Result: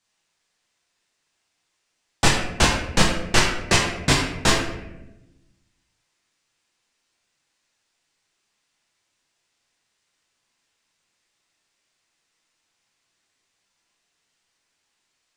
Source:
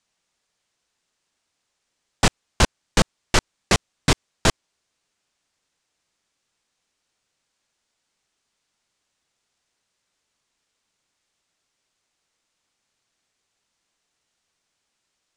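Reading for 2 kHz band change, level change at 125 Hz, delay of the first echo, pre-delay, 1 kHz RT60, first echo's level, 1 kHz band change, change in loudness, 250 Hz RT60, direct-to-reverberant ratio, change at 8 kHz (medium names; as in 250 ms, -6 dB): +4.0 dB, +0.5 dB, no echo, 3 ms, 0.75 s, no echo, +2.0 dB, +2.0 dB, 1.5 s, -4.0 dB, +2.0 dB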